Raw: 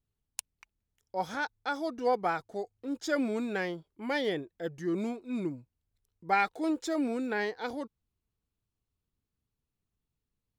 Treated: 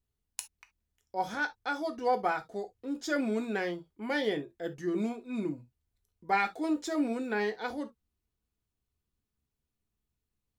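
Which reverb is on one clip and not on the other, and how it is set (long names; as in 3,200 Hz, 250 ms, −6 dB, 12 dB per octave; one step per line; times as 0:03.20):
reverb whose tail is shaped and stops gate 90 ms falling, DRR 6 dB
level −1 dB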